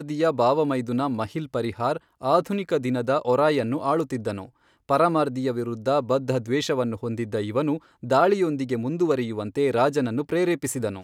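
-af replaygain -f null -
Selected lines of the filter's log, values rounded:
track_gain = +4.0 dB
track_peak = 0.327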